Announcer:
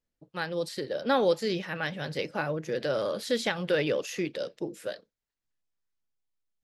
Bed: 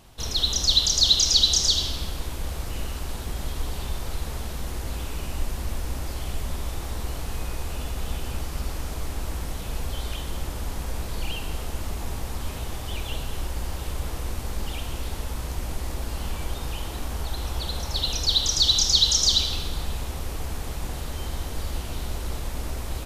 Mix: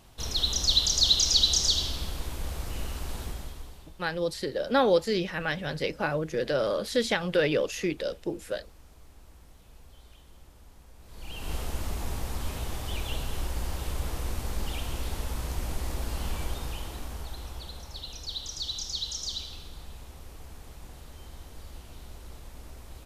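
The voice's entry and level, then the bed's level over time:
3.65 s, +2.0 dB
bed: 3.24 s -3.5 dB
3.97 s -22.5 dB
10.98 s -22.5 dB
11.52 s -2 dB
16.40 s -2 dB
18.05 s -14.5 dB

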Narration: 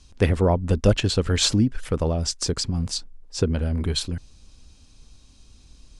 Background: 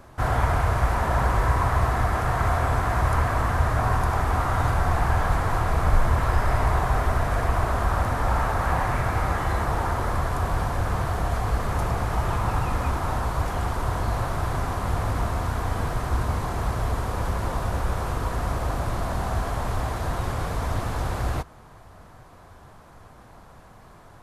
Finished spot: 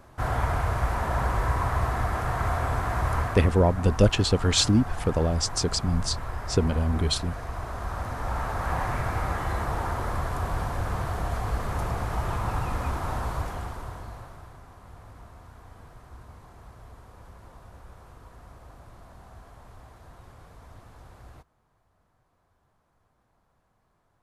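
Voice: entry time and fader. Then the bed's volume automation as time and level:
3.15 s, -1.0 dB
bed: 3.20 s -4 dB
3.60 s -12 dB
7.45 s -12 dB
8.83 s -4 dB
13.33 s -4 dB
14.60 s -22 dB

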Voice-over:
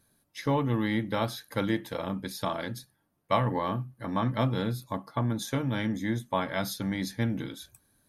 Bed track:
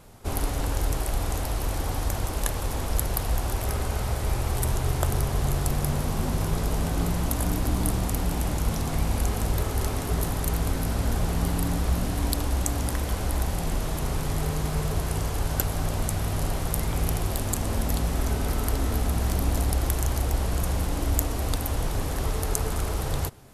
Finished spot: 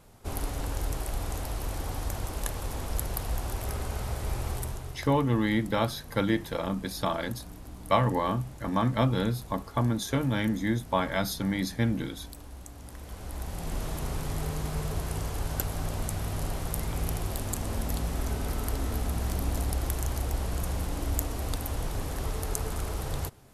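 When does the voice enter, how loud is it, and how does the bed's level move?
4.60 s, +2.0 dB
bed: 4.51 s -5.5 dB
5.10 s -19 dB
12.76 s -19 dB
13.80 s -5 dB

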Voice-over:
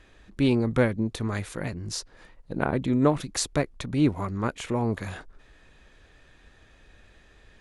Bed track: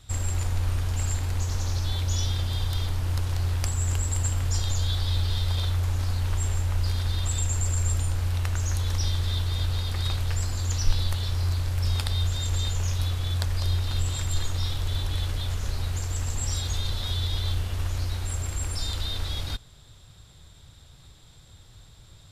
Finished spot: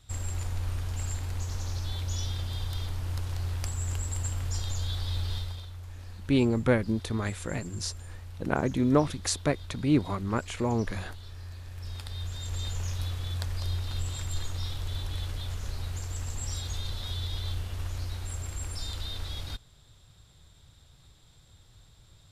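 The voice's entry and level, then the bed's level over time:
5.90 s, -1.5 dB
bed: 5.36 s -6 dB
5.67 s -17 dB
11.51 s -17 dB
12.71 s -6 dB

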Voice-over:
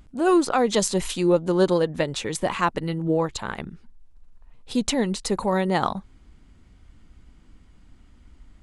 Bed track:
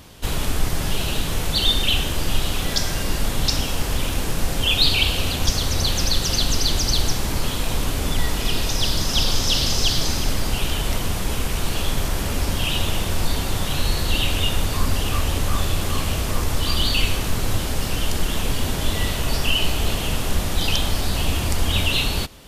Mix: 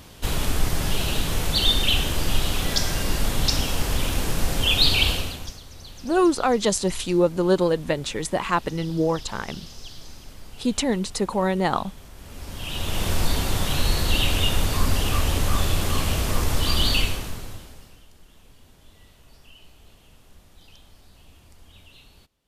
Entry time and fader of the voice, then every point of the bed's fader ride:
5.90 s, 0.0 dB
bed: 5.11 s -1 dB
5.62 s -21.5 dB
12.14 s -21.5 dB
13.07 s -0.5 dB
16.95 s -0.5 dB
18.08 s -30 dB

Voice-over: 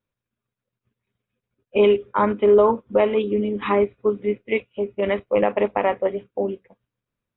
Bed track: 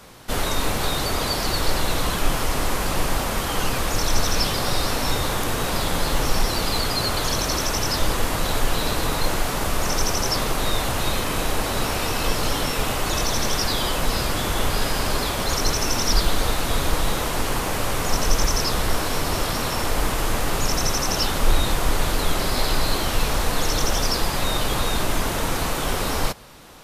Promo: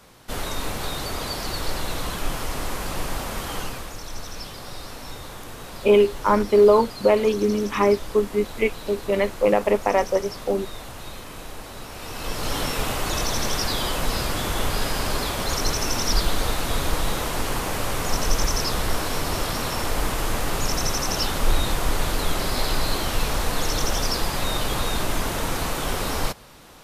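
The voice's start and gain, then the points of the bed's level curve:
4.10 s, +0.5 dB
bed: 3.55 s -5.5 dB
3.98 s -14 dB
11.89 s -14 dB
12.58 s -2 dB

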